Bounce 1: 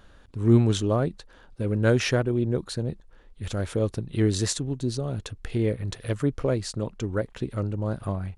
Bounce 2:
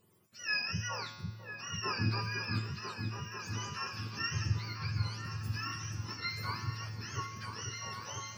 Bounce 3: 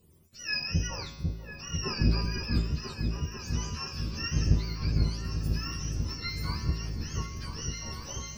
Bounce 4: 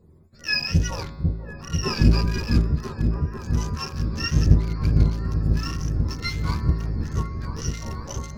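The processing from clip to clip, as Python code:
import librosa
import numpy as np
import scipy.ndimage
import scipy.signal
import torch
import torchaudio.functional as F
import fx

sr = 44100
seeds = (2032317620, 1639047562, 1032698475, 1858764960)

y1 = fx.octave_mirror(x, sr, pivot_hz=770.0)
y1 = fx.comb_fb(y1, sr, f0_hz=110.0, decay_s=1.2, harmonics='all', damping=0.0, mix_pct=80)
y1 = fx.echo_opening(y1, sr, ms=496, hz=400, octaves=2, feedback_pct=70, wet_db=-3)
y2 = fx.octave_divider(y1, sr, octaves=1, level_db=2.0)
y2 = fx.peak_eq(y2, sr, hz=1400.0, db=-9.5, octaves=2.1)
y2 = fx.doubler(y2, sr, ms=13.0, db=-6.5)
y2 = F.gain(torch.from_numpy(y2), 5.0).numpy()
y3 = fx.wiener(y2, sr, points=15)
y3 = F.gain(torch.from_numpy(y3), 8.5).numpy()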